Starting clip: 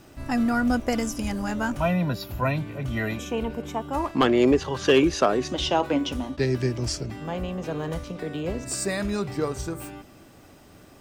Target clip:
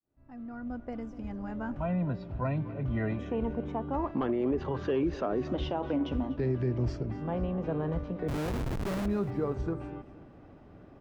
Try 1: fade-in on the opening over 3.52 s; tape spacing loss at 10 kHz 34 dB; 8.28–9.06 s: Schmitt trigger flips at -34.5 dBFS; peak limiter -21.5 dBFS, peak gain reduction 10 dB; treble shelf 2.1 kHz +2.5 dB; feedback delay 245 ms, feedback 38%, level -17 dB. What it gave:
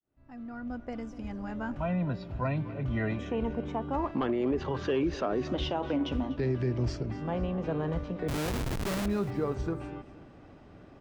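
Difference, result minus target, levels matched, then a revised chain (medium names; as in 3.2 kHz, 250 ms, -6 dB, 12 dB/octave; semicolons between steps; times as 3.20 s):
4 kHz band +6.0 dB
fade-in on the opening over 3.52 s; tape spacing loss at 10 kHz 34 dB; 8.28–9.06 s: Schmitt trigger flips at -34.5 dBFS; peak limiter -21.5 dBFS, peak gain reduction 10 dB; treble shelf 2.1 kHz -6.5 dB; feedback delay 245 ms, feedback 38%, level -17 dB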